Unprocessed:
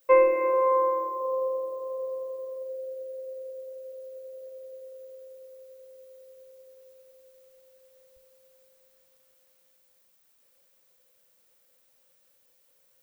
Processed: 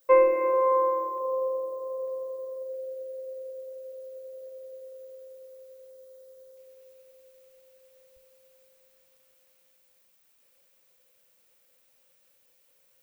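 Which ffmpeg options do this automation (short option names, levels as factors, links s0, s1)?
-af "asetnsamples=n=441:p=0,asendcmd='1.18 equalizer g -13;2.08 equalizer g -7;2.74 equalizer g -1;5.9 equalizer g -8;6.57 equalizer g 4',equalizer=f=2500:t=o:w=0.56:g=-4.5"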